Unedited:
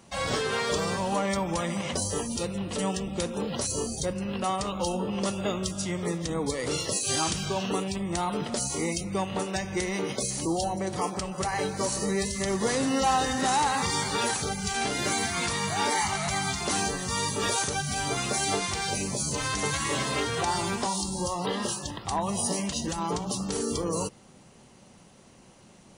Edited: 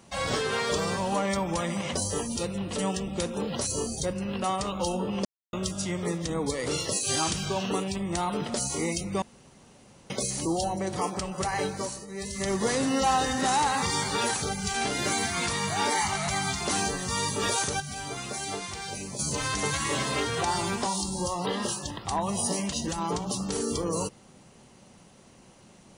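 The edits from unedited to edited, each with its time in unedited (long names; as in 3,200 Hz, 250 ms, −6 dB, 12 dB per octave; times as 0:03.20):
0:05.25–0:05.53: silence
0:09.22–0:10.10: fill with room tone
0:11.65–0:12.49: duck −17 dB, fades 0.42 s
0:17.80–0:19.19: clip gain −6.5 dB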